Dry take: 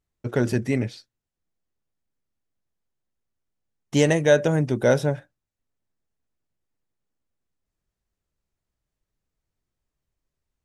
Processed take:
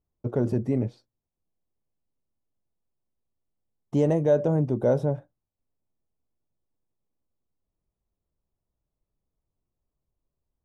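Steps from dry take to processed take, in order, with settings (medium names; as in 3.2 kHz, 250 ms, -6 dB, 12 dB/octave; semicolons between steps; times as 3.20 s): FFT filter 620 Hz 0 dB, 1.1 kHz -3 dB, 1.7 kHz -17 dB; in parallel at +2 dB: peak limiter -17 dBFS, peak gain reduction 10 dB; on the sum: trim -7 dB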